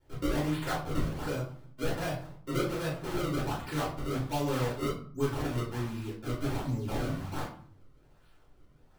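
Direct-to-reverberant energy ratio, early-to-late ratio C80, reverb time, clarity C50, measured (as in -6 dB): -7.5 dB, 10.0 dB, 0.50 s, 5.0 dB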